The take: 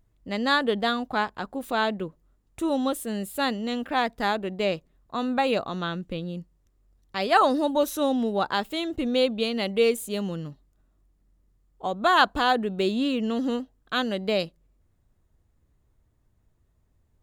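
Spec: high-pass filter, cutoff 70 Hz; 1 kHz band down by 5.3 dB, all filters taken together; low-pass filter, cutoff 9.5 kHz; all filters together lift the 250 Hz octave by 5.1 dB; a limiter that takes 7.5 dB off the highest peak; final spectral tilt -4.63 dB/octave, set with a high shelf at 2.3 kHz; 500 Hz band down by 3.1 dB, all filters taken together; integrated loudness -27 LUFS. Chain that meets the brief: high-pass 70 Hz; low-pass 9.5 kHz; peaking EQ 250 Hz +7 dB; peaking EQ 500 Hz -4 dB; peaking EQ 1 kHz -7.5 dB; treble shelf 2.3 kHz +6.5 dB; trim -1 dB; peak limiter -16.5 dBFS

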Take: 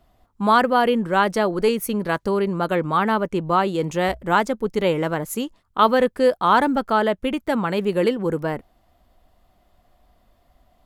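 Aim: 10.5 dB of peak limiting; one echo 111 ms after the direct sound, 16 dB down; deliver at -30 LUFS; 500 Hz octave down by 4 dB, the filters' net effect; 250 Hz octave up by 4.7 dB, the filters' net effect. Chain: peaking EQ 250 Hz +7.5 dB; peaking EQ 500 Hz -7 dB; peak limiter -15 dBFS; delay 111 ms -16 dB; trim -5.5 dB

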